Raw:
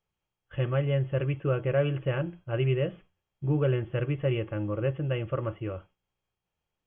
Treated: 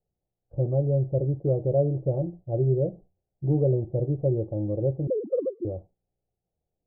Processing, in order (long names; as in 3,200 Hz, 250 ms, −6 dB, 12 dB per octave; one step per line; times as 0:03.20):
0:05.07–0:05.65: three sine waves on the formant tracks
Chebyshev low-pass filter 750 Hz, order 5
level +3.5 dB